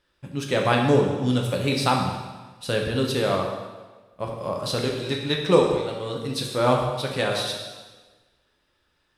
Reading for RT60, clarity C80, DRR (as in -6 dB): 1.3 s, 5.5 dB, 0.5 dB